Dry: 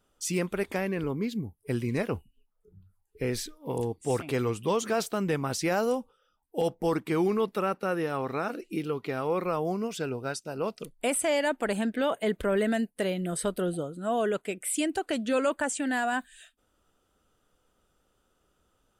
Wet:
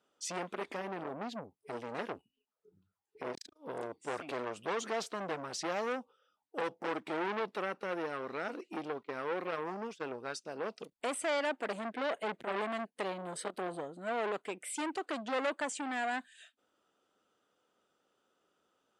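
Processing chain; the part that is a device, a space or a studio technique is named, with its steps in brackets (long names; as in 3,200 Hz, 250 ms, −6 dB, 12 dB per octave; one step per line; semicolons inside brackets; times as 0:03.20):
0:09.03–0:10.15: noise gate −34 dBFS, range −23 dB
public-address speaker with an overloaded transformer (saturating transformer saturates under 1,500 Hz; band-pass filter 260–6,300 Hz)
level −3 dB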